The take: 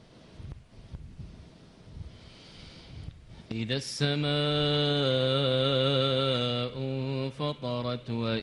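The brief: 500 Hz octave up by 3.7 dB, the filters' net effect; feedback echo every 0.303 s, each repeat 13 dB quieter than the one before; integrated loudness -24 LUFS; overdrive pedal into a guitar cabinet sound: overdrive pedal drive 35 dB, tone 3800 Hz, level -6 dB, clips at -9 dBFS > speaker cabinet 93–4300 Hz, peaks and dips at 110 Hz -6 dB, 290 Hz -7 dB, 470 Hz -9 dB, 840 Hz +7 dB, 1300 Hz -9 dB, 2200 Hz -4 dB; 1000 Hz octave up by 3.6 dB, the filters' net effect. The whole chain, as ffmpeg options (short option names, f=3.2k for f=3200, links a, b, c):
-filter_complex "[0:a]equalizer=f=500:t=o:g=8.5,equalizer=f=1k:t=o:g=3.5,aecho=1:1:303|606|909:0.224|0.0493|0.0108,asplit=2[a][b];[b]highpass=f=720:p=1,volume=35dB,asoftclip=type=tanh:threshold=-9dB[c];[a][c]amix=inputs=2:normalize=0,lowpass=f=3.8k:p=1,volume=-6dB,highpass=93,equalizer=f=110:t=q:w=4:g=-6,equalizer=f=290:t=q:w=4:g=-7,equalizer=f=470:t=q:w=4:g=-9,equalizer=f=840:t=q:w=4:g=7,equalizer=f=1.3k:t=q:w=4:g=-9,equalizer=f=2.2k:t=q:w=4:g=-4,lowpass=f=4.3k:w=0.5412,lowpass=f=4.3k:w=1.3066,volume=-3.5dB"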